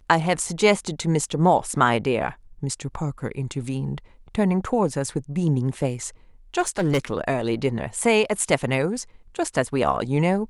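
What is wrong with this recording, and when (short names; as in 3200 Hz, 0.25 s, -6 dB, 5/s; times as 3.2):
6.6–6.99 clipped -16.5 dBFS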